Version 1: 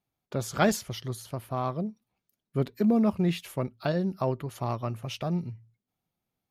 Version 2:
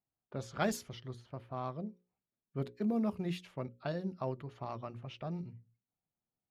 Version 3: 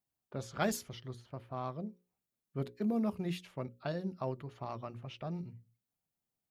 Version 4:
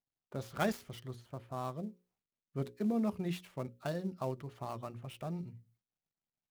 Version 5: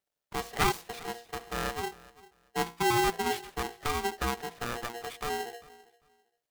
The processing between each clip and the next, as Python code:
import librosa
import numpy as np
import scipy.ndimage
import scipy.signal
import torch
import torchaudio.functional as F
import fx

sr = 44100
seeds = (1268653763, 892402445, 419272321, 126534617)

y1 = fx.env_lowpass(x, sr, base_hz=1400.0, full_db=-22.0)
y1 = fx.hum_notches(y1, sr, base_hz=60, count=9)
y1 = y1 * librosa.db_to_amplitude(-9.0)
y2 = fx.high_shelf(y1, sr, hz=8600.0, db=6.5)
y3 = fx.dead_time(y2, sr, dead_ms=0.063)
y4 = fx.echo_feedback(y3, sr, ms=396, feedback_pct=21, wet_db=-21)
y4 = y4 * np.sign(np.sin(2.0 * np.pi * 590.0 * np.arange(len(y4)) / sr))
y4 = y4 * librosa.db_to_amplitude(6.0)